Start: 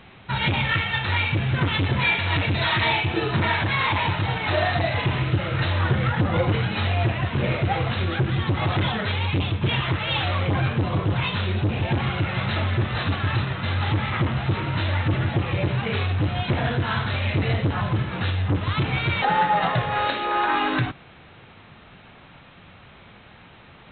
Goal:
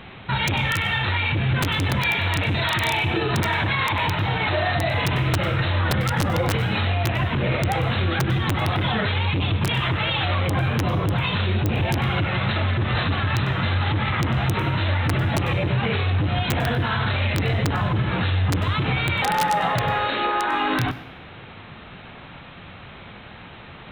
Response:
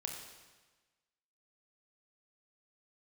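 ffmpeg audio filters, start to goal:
-filter_complex "[0:a]aeval=exprs='(mod(3.76*val(0)+1,2)-1)/3.76':c=same,alimiter=limit=0.0944:level=0:latency=1:release=66,asplit=2[s0][s1];[1:a]atrim=start_sample=2205,asetrate=74970,aresample=44100,adelay=98[s2];[s1][s2]afir=irnorm=-1:irlink=0,volume=0.282[s3];[s0][s3]amix=inputs=2:normalize=0,volume=2.11"

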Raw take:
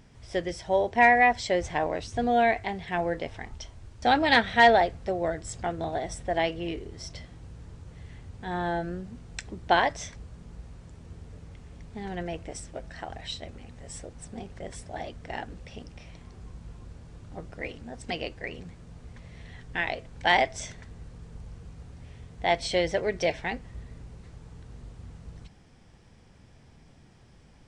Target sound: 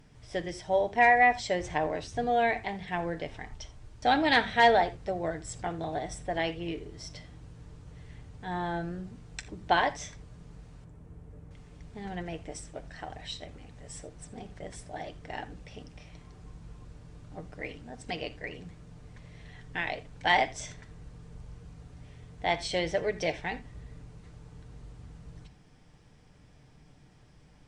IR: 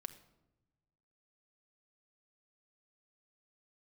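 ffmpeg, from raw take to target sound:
-filter_complex "[0:a]asettb=1/sr,asplit=3[s0][s1][s2];[s0]atrim=end=10.844[s3];[s1]atrim=start=10.84:end=11.51,asetpts=PTS-STARTPTS,afade=t=in:d=0.004:c=qsin,afade=t=out:st=0.666:d=0.004:c=qsin,equalizer=f=4600:t=o:w=2.2:g=-14[s4];[s2]atrim=start=11.506[s5];[s3][s4]acrossfade=d=0.004:c1=hsin:c2=qsin[s6];[s6][s5]acrossfade=d=0.004:c1=qsin:c2=hsin[s7];[1:a]atrim=start_sample=2205,atrim=end_sample=3087,asetrate=33516,aresample=44100[s8];[s7][s8]afir=irnorm=-1:irlink=0"

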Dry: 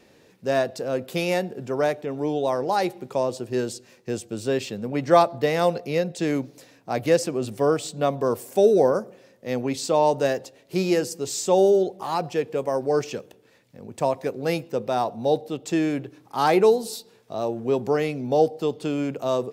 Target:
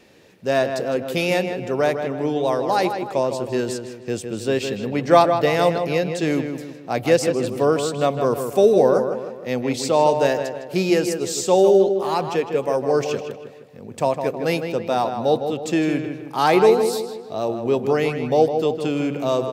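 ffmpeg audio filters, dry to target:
-filter_complex "[0:a]equalizer=f=2700:w=1.3:g=3,asplit=2[s0][s1];[s1]adelay=157,lowpass=f=2900:p=1,volume=0.447,asplit=2[s2][s3];[s3]adelay=157,lowpass=f=2900:p=1,volume=0.47,asplit=2[s4][s5];[s5]adelay=157,lowpass=f=2900:p=1,volume=0.47,asplit=2[s6][s7];[s7]adelay=157,lowpass=f=2900:p=1,volume=0.47,asplit=2[s8][s9];[s9]adelay=157,lowpass=f=2900:p=1,volume=0.47,asplit=2[s10][s11];[s11]adelay=157,lowpass=f=2900:p=1,volume=0.47[s12];[s2][s4][s6][s8][s10][s12]amix=inputs=6:normalize=0[s13];[s0][s13]amix=inputs=2:normalize=0,volume=1.33"

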